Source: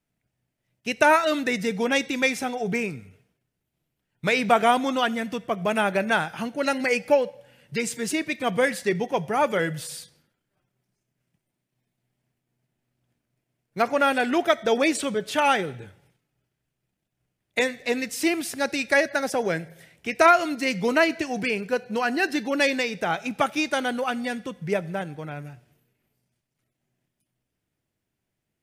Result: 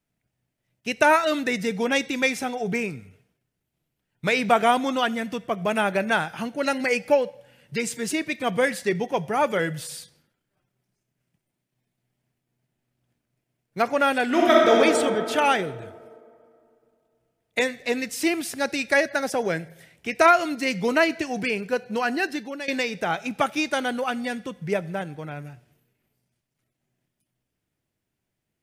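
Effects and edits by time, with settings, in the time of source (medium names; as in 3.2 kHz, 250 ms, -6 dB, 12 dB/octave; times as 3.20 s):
14.25–14.79 s: reverb throw, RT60 2.6 s, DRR -4 dB
22.11–22.68 s: fade out, to -16.5 dB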